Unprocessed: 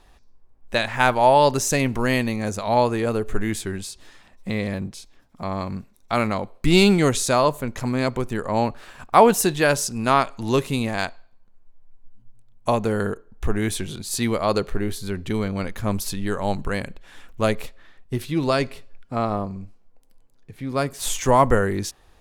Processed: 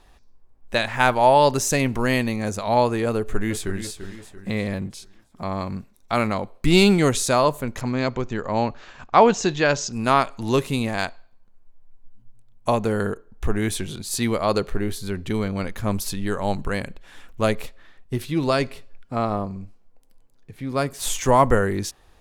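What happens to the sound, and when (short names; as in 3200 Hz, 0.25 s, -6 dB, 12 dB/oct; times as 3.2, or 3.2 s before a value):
3.16–3.81 echo throw 0.34 s, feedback 45%, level -10 dB
7.81–9.93 elliptic low-pass 6900 Hz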